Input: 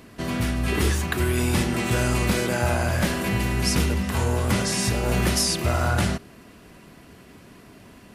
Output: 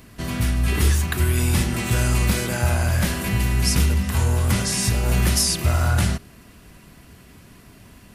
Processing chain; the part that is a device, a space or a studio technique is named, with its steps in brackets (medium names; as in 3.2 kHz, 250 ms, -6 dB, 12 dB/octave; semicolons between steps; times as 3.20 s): smiley-face EQ (bass shelf 120 Hz +8.5 dB; peaking EQ 410 Hz -4.5 dB 2.2 oct; treble shelf 7.7 kHz +7 dB)